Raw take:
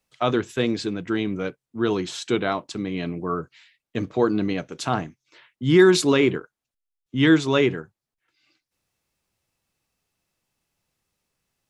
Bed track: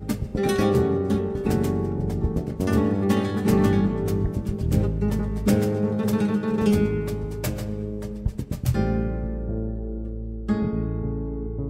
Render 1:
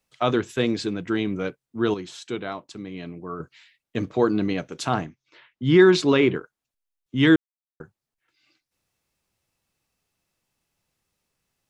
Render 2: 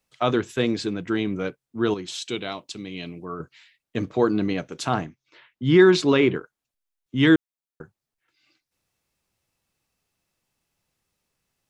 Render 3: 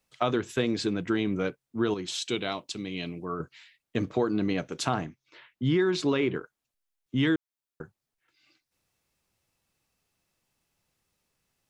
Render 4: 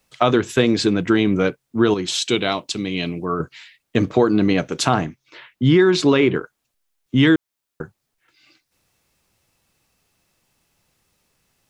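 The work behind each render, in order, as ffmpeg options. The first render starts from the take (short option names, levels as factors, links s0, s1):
-filter_complex "[0:a]asettb=1/sr,asplit=3[s0][s1][s2];[s0]atrim=end=5.054[s3];[s1]atrim=start=5.05:end=6.36,asetpts=PTS-STARTPTS,afade=t=in:d=0.004:c=qsin,afade=t=out:st=1.306:d=0.004:c=qsin,lowpass=4600[s4];[s2]atrim=start=6.356[s5];[s3][s4]acrossfade=d=0.004:c1=hsin:c2=qsin[s6];[s6][s5]acrossfade=d=0.004:c1=qsin:c2=hsin,asplit=5[s7][s8][s9][s10][s11];[s7]atrim=end=1.942[s12];[s8]atrim=start=1.938:end=3.402,asetpts=PTS-STARTPTS,volume=0.422[s13];[s9]atrim=start=3.398:end=7.36,asetpts=PTS-STARTPTS,afade=t=out:st=3.958:d=0.004:c=hsin[s14];[s10]atrim=start=7.36:end=7.8,asetpts=PTS-STARTPTS,volume=0[s15];[s11]atrim=start=7.8,asetpts=PTS-STARTPTS,afade=t=in:d=0.004:c=hsin[s16];[s12][s13]acrossfade=d=0.004:c1=hsin:c2=hsin[s17];[s14][s15][s16]concat=n=3:v=0:a=1[s18];[s17][s18]acrossfade=d=0.004:c1=hsin:c2=hsin"
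-filter_complex "[0:a]asettb=1/sr,asplit=3[s0][s1][s2];[s0]atrim=end=2.084[s3];[s1]atrim=start=2.08:end=3.25,asetpts=PTS-STARTPTS,afade=t=in:d=0.004:c=qsin,afade=t=out:st=1.166:d=0.004:c=qsin,highshelf=f=2100:t=q:w=1.5:g=7[s4];[s2]atrim=start=3.246[s5];[s3][s4]acrossfade=d=0.004:c1=hsin:c2=qsin[s6];[s6][s5]acrossfade=d=0.004:c1=qsin:c2=hsin"
-af "acompressor=threshold=0.0794:ratio=6"
-af "volume=3.35,alimiter=limit=0.891:level=0:latency=1"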